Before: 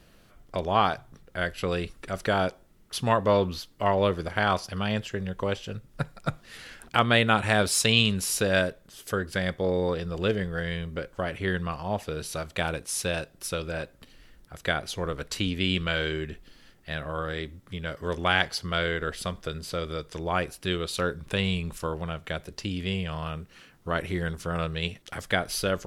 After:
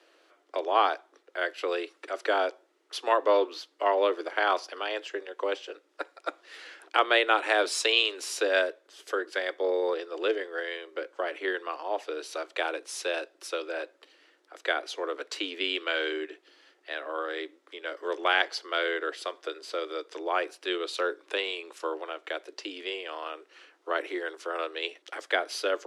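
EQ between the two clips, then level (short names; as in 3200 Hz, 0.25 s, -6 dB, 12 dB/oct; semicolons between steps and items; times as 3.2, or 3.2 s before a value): steep high-pass 300 Hz 96 dB/oct; air absorption 70 m; 0.0 dB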